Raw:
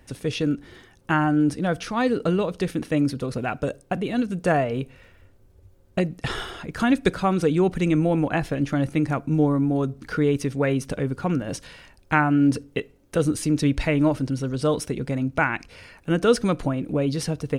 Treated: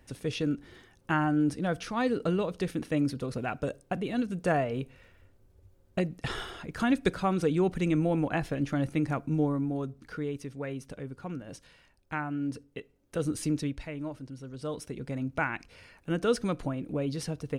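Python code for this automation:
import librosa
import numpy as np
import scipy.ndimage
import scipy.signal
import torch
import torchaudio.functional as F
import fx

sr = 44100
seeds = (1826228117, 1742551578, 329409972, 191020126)

y = fx.gain(x, sr, db=fx.line((9.24, -6.0), (10.4, -14.0), (12.78, -14.0), (13.48, -6.0), (13.85, -17.0), (14.35, -17.0), (15.2, -8.0)))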